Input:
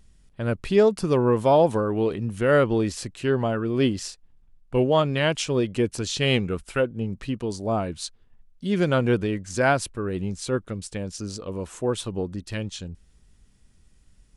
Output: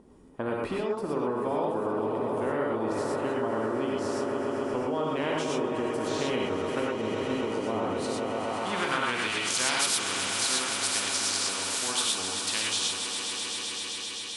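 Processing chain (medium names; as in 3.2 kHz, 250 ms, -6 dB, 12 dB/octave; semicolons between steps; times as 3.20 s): treble shelf 5.5 kHz +7.5 dB; on a send: echo with a slow build-up 131 ms, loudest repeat 5, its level -16 dB; on the sum: band-pass sweep 440 Hz -> 3.7 kHz, 8.13–9.56 s; compression 3:1, threshold -33 dBFS, peak gain reduction 13.5 dB; fifteen-band graphic EQ 250 Hz +11 dB, 1 kHz +10 dB, 10 kHz +9 dB; gated-style reverb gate 140 ms rising, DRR -2.5 dB; spectrum-flattening compressor 2:1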